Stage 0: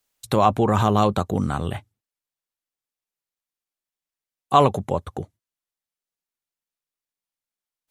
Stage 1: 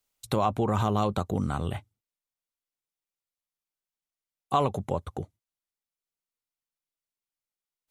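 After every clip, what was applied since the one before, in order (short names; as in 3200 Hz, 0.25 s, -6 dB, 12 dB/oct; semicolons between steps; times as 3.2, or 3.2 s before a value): low shelf 67 Hz +5.5 dB; notch 1700 Hz, Q 13; compressor 2:1, threshold -19 dBFS, peak gain reduction 5.5 dB; gain -4.5 dB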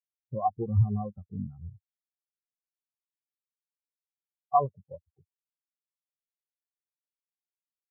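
spectral expander 4:1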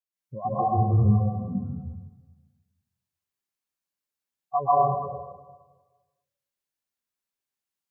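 plate-style reverb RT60 1.3 s, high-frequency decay 0.95×, pre-delay 0.115 s, DRR -9.5 dB; gain -3.5 dB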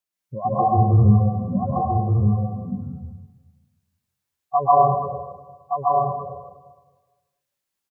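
echo 1.171 s -4.5 dB; gain +5.5 dB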